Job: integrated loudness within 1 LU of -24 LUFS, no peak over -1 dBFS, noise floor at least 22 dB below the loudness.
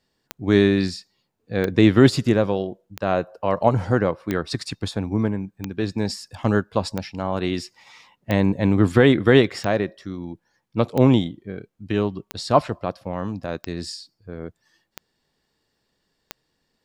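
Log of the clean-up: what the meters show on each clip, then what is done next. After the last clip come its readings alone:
clicks 13; loudness -21.5 LUFS; peak -2.0 dBFS; loudness target -24.0 LUFS
-> de-click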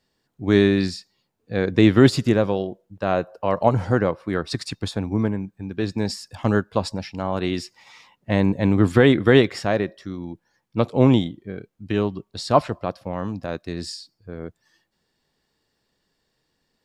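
clicks 0; loudness -21.5 LUFS; peak -2.0 dBFS; loudness target -24.0 LUFS
-> gain -2.5 dB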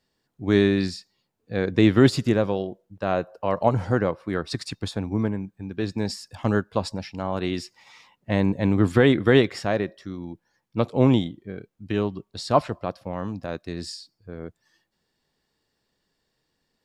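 loudness -24.0 LUFS; peak -4.5 dBFS; noise floor -77 dBFS

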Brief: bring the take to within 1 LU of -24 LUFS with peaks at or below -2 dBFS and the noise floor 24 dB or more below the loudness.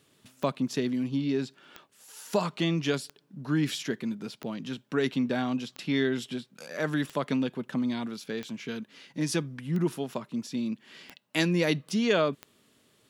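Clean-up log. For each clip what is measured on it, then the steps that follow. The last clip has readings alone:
clicks 10; loudness -30.5 LUFS; peak -10.0 dBFS; loudness target -24.0 LUFS
-> de-click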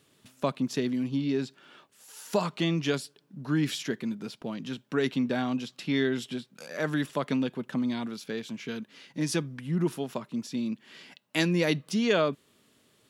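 clicks 0; loudness -30.5 LUFS; peak -10.0 dBFS; loudness target -24.0 LUFS
-> gain +6.5 dB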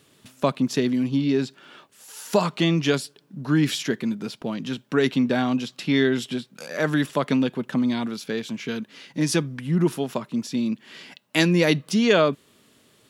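loudness -24.0 LUFS; peak -3.5 dBFS; noise floor -60 dBFS

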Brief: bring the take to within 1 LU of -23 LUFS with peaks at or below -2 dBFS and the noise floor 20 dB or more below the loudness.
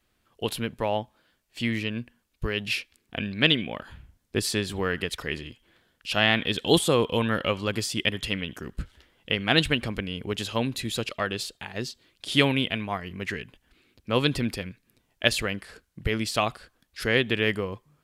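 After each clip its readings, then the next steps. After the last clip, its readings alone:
loudness -27.0 LUFS; peak -3.0 dBFS; loudness target -23.0 LUFS
-> gain +4 dB; limiter -2 dBFS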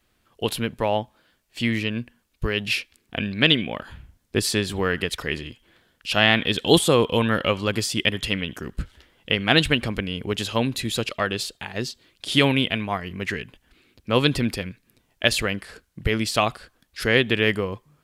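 loudness -23.0 LUFS; peak -2.0 dBFS; noise floor -68 dBFS

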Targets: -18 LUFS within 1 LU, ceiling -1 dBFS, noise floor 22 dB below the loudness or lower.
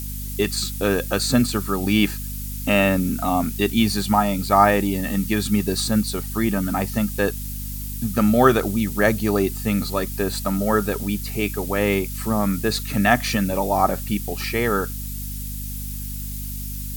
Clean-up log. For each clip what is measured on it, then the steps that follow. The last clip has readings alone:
hum 50 Hz; harmonics up to 250 Hz; hum level -29 dBFS; noise floor -30 dBFS; noise floor target -44 dBFS; loudness -22.0 LUFS; peak -2.5 dBFS; loudness target -18.0 LUFS
-> notches 50/100/150/200/250 Hz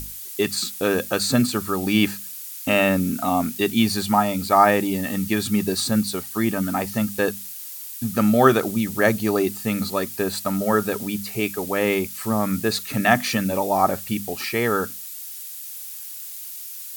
hum none; noise floor -36 dBFS; noise floor target -45 dBFS
-> noise print and reduce 9 dB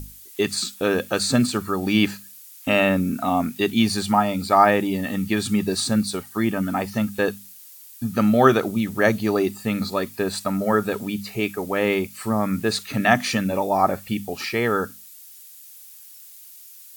noise floor -45 dBFS; loudness -22.0 LUFS; peak -2.5 dBFS; loudness target -18.0 LUFS
-> gain +4 dB; limiter -1 dBFS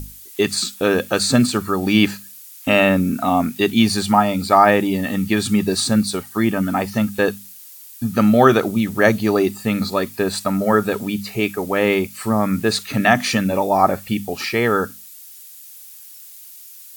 loudness -18.5 LUFS; peak -1.0 dBFS; noise floor -41 dBFS

